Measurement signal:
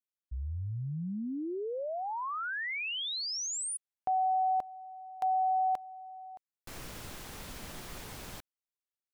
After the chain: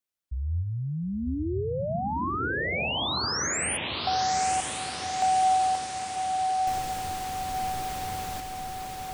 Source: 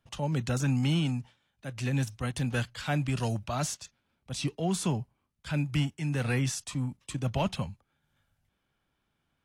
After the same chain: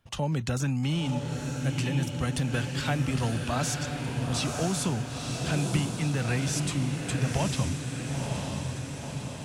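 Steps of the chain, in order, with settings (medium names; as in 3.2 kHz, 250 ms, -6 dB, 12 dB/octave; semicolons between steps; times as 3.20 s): peaking EQ 85 Hz +7.5 dB 0.22 oct; compression, threshold -30 dBFS; echo that smears into a reverb 964 ms, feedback 62%, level -3.5 dB; trim +5 dB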